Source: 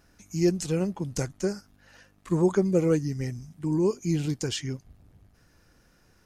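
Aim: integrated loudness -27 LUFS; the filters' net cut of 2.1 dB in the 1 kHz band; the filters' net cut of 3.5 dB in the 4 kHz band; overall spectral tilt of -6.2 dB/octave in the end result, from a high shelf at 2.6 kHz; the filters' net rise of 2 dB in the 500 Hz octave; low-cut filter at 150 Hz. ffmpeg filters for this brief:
-af "highpass=150,equalizer=f=500:t=o:g=3.5,equalizer=f=1000:t=o:g=-4,highshelf=f=2600:g=3,equalizer=f=4000:t=o:g=-8"

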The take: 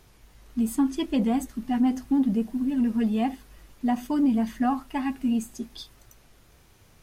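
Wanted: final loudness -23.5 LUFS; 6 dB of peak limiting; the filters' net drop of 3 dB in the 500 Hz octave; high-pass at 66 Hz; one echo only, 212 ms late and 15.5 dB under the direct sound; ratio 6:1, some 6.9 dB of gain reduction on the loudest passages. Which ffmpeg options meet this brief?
-af "highpass=66,equalizer=f=500:t=o:g=-4,acompressor=threshold=0.0447:ratio=6,alimiter=level_in=1.33:limit=0.0631:level=0:latency=1,volume=0.75,aecho=1:1:212:0.168,volume=3.55"

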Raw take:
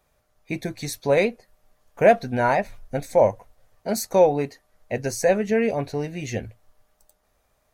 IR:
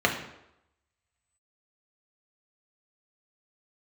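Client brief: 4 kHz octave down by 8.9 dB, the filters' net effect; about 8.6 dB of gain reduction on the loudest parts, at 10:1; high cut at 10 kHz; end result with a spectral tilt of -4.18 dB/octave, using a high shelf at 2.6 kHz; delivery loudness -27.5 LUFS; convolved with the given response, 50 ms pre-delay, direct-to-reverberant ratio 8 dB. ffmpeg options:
-filter_complex "[0:a]lowpass=10000,highshelf=f=2600:g=-4.5,equalizer=f=4000:t=o:g=-7,acompressor=threshold=0.112:ratio=10,asplit=2[s0][s1];[1:a]atrim=start_sample=2205,adelay=50[s2];[s1][s2]afir=irnorm=-1:irlink=0,volume=0.0668[s3];[s0][s3]amix=inputs=2:normalize=0,volume=0.944"

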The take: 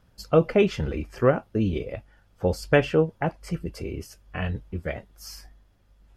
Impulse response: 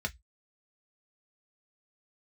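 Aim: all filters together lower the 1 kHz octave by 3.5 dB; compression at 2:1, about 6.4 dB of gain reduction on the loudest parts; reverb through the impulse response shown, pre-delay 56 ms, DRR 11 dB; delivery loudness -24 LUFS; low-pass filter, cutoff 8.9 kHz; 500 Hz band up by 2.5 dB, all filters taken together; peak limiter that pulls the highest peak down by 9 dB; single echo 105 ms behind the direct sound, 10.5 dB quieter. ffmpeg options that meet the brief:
-filter_complex "[0:a]lowpass=8900,equalizer=f=500:t=o:g=4.5,equalizer=f=1000:t=o:g=-7.5,acompressor=threshold=0.0708:ratio=2,alimiter=limit=0.1:level=0:latency=1,aecho=1:1:105:0.299,asplit=2[s0][s1];[1:a]atrim=start_sample=2205,adelay=56[s2];[s1][s2]afir=irnorm=-1:irlink=0,volume=0.178[s3];[s0][s3]amix=inputs=2:normalize=0,volume=2.37"

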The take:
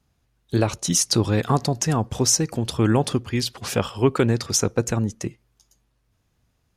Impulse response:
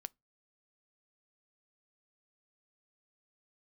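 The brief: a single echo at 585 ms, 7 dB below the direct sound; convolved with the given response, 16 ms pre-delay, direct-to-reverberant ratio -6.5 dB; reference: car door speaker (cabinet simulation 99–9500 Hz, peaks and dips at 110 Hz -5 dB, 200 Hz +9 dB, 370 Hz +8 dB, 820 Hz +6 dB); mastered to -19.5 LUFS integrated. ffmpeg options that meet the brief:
-filter_complex "[0:a]aecho=1:1:585:0.447,asplit=2[s0][s1];[1:a]atrim=start_sample=2205,adelay=16[s2];[s1][s2]afir=irnorm=-1:irlink=0,volume=3.55[s3];[s0][s3]amix=inputs=2:normalize=0,highpass=99,equalizer=f=110:t=q:w=4:g=-5,equalizer=f=200:t=q:w=4:g=9,equalizer=f=370:t=q:w=4:g=8,equalizer=f=820:t=q:w=4:g=6,lowpass=f=9500:w=0.5412,lowpass=f=9500:w=1.3066,volume=0.422"

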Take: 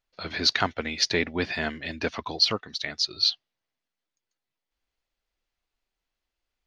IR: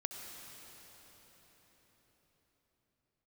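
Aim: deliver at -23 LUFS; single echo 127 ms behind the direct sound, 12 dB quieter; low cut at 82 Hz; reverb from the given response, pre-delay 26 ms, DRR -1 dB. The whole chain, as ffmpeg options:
-filter_complex "[0:a]highpass=82,aecho=1:1:127:0.251,asplit=2[s0][s1];[1:a]atrim=start_sample=2205,adelay=26[s2];[s1][s2]afir=irnorm=-1:irlink=0,volume=1.12[s3];[s0][s3]amix=inputs=2:normalize=0"

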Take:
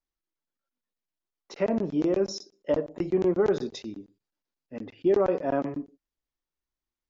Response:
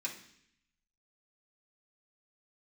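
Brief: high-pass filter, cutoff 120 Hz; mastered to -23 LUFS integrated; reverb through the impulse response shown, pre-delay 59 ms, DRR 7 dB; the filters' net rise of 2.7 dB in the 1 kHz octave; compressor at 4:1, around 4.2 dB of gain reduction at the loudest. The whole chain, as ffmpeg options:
-filter_complex "[0:a]highpass=120,equalizer=f=1000:t=o:g=4,acompressor=threshold=0.0708:ratio=4,asplit=2[s0][s1];[1:a]atrim=start_sample=2205,adelay=59[s2];[s1][s2]afir=irnorm=-1:irlink=0,volume=0.398[s3];[s0][s3]amix=inputs=2:normalize=0,volume=2.11"

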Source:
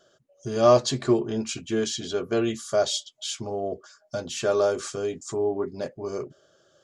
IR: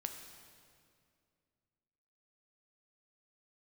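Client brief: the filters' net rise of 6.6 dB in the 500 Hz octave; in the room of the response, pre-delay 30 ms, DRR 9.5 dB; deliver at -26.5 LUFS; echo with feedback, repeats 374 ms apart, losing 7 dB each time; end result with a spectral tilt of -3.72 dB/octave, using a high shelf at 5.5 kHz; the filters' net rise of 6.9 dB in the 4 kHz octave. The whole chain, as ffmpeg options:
-filter_complex "[0:a]equalizer=f=500:t=o:g=8.5,equalizer=f=4000:t=o:g=6,highshelf=f=5500:g=6,aecho=1:1:374|748|1122|1496|1870:0.447|0.201|0.0905|0.0407|0.0183,asplit=2[s0][s1];[1:a]atrim=start_sample=2205,adelay=30[s2];[s1][s2]afir=irnorm=-1:irlink=0,volume=0.398[s3];[s0][s3]amix=inputs=2:normalize=0,volume=0.422"

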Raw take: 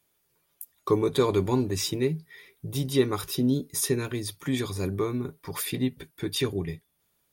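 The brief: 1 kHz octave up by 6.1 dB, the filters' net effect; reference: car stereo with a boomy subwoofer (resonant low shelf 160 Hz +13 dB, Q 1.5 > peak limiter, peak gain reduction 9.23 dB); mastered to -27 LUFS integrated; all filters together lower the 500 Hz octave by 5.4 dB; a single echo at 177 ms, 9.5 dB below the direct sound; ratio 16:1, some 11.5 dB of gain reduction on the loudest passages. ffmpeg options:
-af "equalizer=f=500:t=o:g=-6.5,equalizer=f=1000:t=o:g=8.5,acompressor=threshold=0.0316:ratio=16,lowshelf=f=160:t=q:w=1.5:g=13,aecho=1:1:177:0.335,volume=1.68,alimiter=limit=0.119:level=0:latency=1"

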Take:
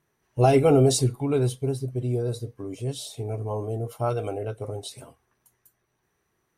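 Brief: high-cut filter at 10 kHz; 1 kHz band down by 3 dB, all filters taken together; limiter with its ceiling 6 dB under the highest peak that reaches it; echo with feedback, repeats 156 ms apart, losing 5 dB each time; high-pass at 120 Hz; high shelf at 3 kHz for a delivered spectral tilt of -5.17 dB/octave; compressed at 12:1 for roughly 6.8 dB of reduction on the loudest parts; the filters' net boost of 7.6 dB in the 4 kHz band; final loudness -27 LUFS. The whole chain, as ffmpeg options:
-af "highpass=120,lowpass=10000,equalizer=f=1000:t=o:g=-5.5,highshelf=f=3000:g=3.5,equalizer=f=4000:t=o:g=6.5,acompressor=threshold=0.0891:ratio=12,alimiter=limit=0.1:level=0:latency=1,aecho=1:1:156|312|468|624|780|936|1092:0.562|0.315|0.176|0.0988|0.0553|0.031|0.0173,volume=1.41"

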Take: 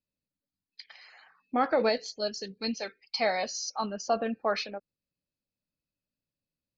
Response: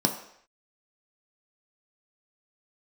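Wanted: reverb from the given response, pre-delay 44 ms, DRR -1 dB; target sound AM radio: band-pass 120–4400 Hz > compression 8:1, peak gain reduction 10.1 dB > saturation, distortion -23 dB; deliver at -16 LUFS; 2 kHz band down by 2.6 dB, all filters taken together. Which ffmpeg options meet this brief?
-filter_complex "[0:a]equalizer=f=2000:t=o:g=-3,asplit=2[s0][s1];[1:a]atrim=start_sample=2205,adelay=44[s2];[s1][s2]afir=irnorm=-1:irlink=0,volume=0.335[s3];[s0][s3]amix=inputs=2:normalize=0,highpass=120,lowpass=4400,acompressor=threshold=0.0562:ratio=8,asoftclip=threshold=0.106,volume=5.96"

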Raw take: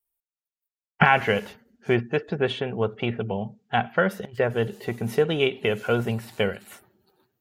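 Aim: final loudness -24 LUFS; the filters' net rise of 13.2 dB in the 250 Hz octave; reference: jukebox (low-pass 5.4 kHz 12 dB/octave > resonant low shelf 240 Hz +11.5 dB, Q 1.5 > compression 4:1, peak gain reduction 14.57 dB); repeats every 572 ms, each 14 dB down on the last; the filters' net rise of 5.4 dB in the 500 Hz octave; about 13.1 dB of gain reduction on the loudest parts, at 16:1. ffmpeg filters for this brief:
-af "equalizer=f=250:t=o:g=5.5,equalizer=f=500:t=o:g=7.5,acompressor=threshold=0.0891:ratio=16,lowpass=5400,lowshelf=f=240:t=q:w=1.5:g=11.5,aecho=1:1:572|1144:0.2|0.0399,acompressor=threshold=0.0398:ratio=4,volume=2.66"

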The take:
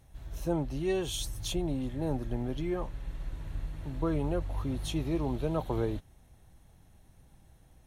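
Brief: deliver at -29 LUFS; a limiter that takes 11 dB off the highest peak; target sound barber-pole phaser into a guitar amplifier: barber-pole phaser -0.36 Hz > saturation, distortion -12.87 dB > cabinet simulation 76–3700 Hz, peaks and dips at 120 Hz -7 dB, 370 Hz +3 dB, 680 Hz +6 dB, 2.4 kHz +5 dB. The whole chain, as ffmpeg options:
-filter_complex "[0:a]alimiter=level_in=1.78:limit=0.0631:level=0:latency=1,volume=0.562,asplit=2[s0][s1];[s1]afreqshift=-0.36[s2];[s0][s2]amix=inputs=2:normalize=1,asoftclip=threshold=0.0119,highpass=76,equalizer=f=120:t=q:w=4:g=-7,equalizer=f=370:t=q:w=4:g=3,equalizer=f=680:t=q:w=4:g=6,equalizer=f=2400:t=q:w=4:g=5,lowpass=f=3700:w=0.5412,lowpass=f=3700:w=1.3066,volume=6.68"

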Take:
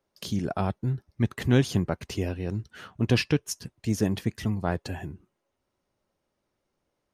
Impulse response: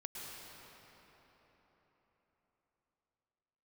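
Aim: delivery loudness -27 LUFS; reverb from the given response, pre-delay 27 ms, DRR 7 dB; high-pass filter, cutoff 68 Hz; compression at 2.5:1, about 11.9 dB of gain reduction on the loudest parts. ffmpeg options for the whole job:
-filter_complex "[0:a]highpass=68,acompressor=threshold=0.0178:ratio=2.5,asplit=2[s0][s1];[1:a]atrim=start_sample=2205,adelay=27[s2];[s1][s2]afir=irnorm=-1:irlink=0,volume=0.501[s3];[s0][s3]amix=inputs=2:normalize=0,volume=3.16"

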